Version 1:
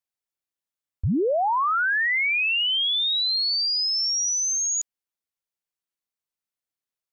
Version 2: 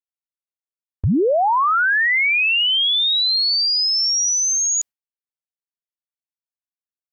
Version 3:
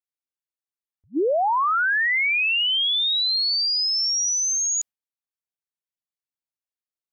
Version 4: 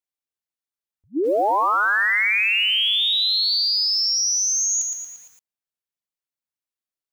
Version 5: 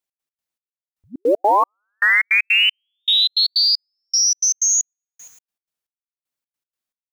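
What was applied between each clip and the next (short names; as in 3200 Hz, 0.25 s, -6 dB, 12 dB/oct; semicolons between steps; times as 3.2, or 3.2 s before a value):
gate with hold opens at -21 dBFS; gain +5.5 dB
attack slew limiter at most 530 dB/s; gain -4 dB
lo-fi delay 0.115 s, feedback 55%, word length 8-bit, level -4 dB
step gate "x.x.xx....x" 156 bpm -60 dB; gain +5 dB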